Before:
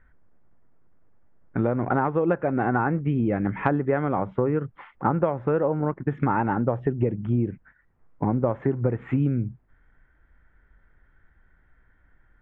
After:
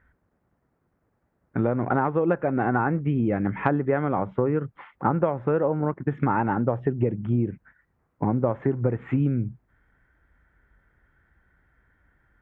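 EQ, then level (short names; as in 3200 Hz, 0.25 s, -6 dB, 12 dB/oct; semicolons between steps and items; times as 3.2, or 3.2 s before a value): HPF 49 Hz; 0.0 dB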